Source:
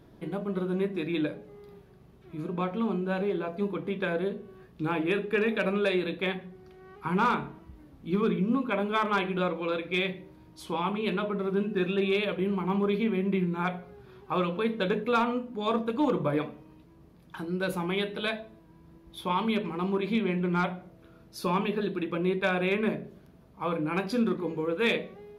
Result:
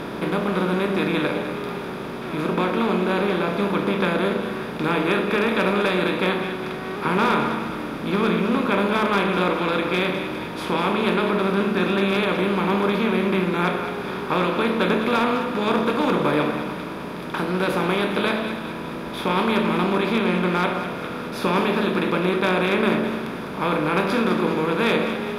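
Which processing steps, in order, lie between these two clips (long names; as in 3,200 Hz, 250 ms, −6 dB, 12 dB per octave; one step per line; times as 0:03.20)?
compressor on every frequency bin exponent 0.4
echo with a time of its own for lows and highs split 1,000 Hz, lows 116 ms, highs 204 ms, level −9 dB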